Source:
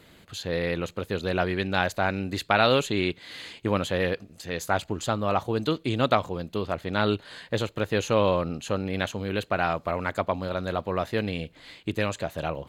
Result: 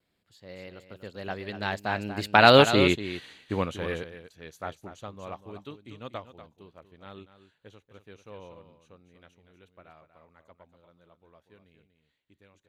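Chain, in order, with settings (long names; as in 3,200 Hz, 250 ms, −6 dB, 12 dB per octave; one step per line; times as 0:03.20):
source passing by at 0:02.73, 24 m/s, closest 13 metres
pitch vibrato 0.5 Hz 13 cents
on a send: single-tap delay 240 ms −8.5 dB
on the sum: expander for the loud parts 1.5 to 1, over −50 dBFS
level +6.5 dB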